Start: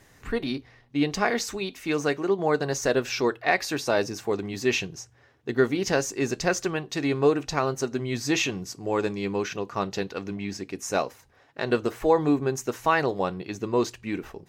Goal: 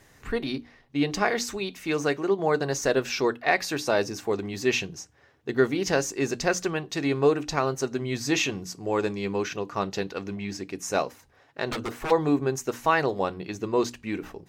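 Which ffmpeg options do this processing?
-filter_complex "[0:a]bandreject=f=60:t=h:w=6,bandreject=f=120:t=h:w=6,bandreject=f=180:t=h:w=6,bandreject=f=240:t=h:w=6,bandreject=f=300:t=h:w=6,asplit=3[s0][s1][s2];[s0]afade=t=out:st=11.69:d=0.02[s3];[s1]aeval=exprs='0.0596*(abs(mod(val(0)/0.0596+3,4)-2)-1)':c=same,afade=t=in:st=11.69:d=0.02,afade=t=out:st=12.1:d=0.02[s4];[s2]afade=t=in:st=12.1:d=0.02[s5];[s3][s4][s5]amix=inputs=3:normalize=0"

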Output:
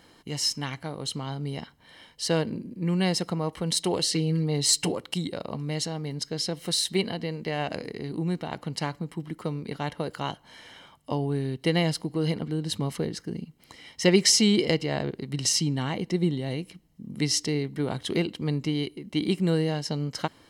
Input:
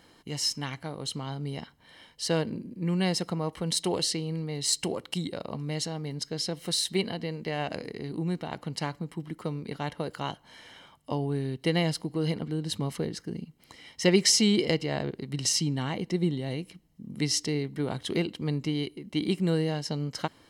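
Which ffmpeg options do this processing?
-filter_complex "[0:a]asettb=1/sr,asplit=3[s0][s1][s2];[s0]atrim=end=4.124[s3];[s1]atrim=start=4.12:end=4.92,asetpts=PTS-STARTPTS,afade=t=in:d=0.004:c=qsin,afade=t=out:st=0.796:d=0.004:c=qsin,aecho=1:1:6.8:0.95,atrim=end_sample=35280[s4];[s2]atrim=start=4.916[s5];[s3][s4]acrossfade=d=0.004:c1=hsin:c2=qsin[s6];[s6][s5]acrossfade=d=0.004:c1=qsin:c2=hsin,volume=1.26"

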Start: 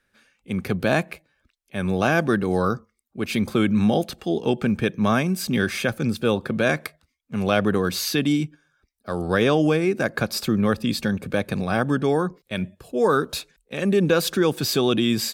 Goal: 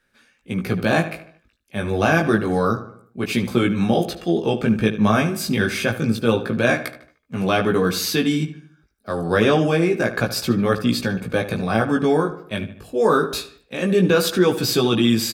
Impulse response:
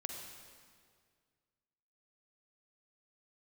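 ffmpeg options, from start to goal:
-filter_complex "[0:a]asplit=2[s0][s1];[s1]adelay=75,lowpass=f=3600:p=1,volume=0.251,asplit=2[s2][s3];[s3]adelay=75,lowpass=f=3600:p=1,volume=0.47,asplit=2[s4][s5];[s5]adelay=75,lowpass=f=3600:p=1,volume=0.47,asplit=2[s6][s7];[s7]adelay=75,lowpass=f=3600:p=1,volume=0.47,asplit=2[s8][s9];[s9]adelay=75,lowpass=f=3600:p=1,volume=0.47[s10];[s0][s2][s4][s6][s8][s10]amix=inputs=6:normalize=0,flanger=delay=16.5:depth=2.4:speed=0.28,volume=1.88"

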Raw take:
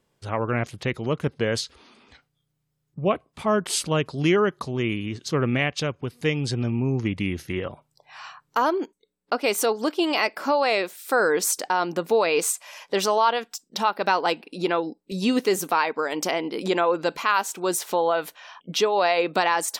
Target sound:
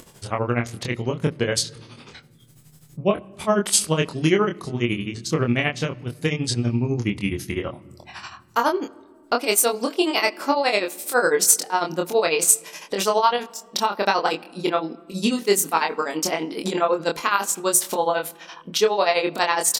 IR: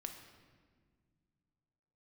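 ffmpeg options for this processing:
-filter_complex "[0:a]acompressor=mode=upward:threshold=0.0178:ratio=2.5,equalizer=f=10000:w=0.54:g=9.5,tremolo=f=12:d=0.88,asplit=2[s0][s1];[s1]adelay=25,volume=0.631[s2];[s0][s2]amix=inputs=2:normalize=0,asplit=2[s3][s4];[1:a]atrim=start_sample=2205,lowshelf=f=430:g=7.5,highshelf=f=7800:g=-7[s5];[s4][s5]afir=irnorm=-1:irlink=0,volume=0.251[s6];[s3][s6]amix=inputs=2:normalize=0,volume=1.19"

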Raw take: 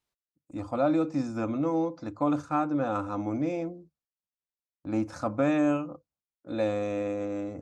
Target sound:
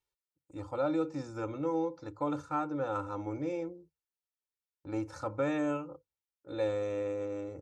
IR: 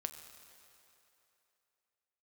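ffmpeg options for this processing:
-af "aecho=1:1:2.2:0.75,volume=0.473"

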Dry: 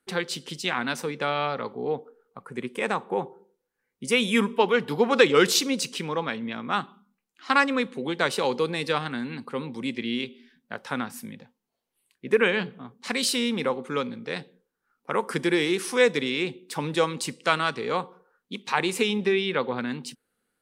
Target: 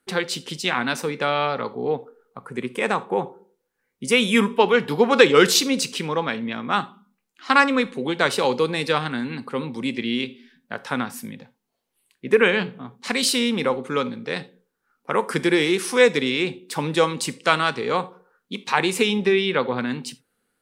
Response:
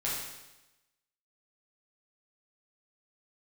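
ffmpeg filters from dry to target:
-filter_complex "[0:a]asplit=2[s0][s1];[1:a]atrim=start_sample=2205,atrim=end_sample=3969[s2];[s1][s2]afir=irnorm=-1:irlink=0,volume=0.106[s3];[s0][s3]amix=inputs=2:normalize=0,volume=1.5"

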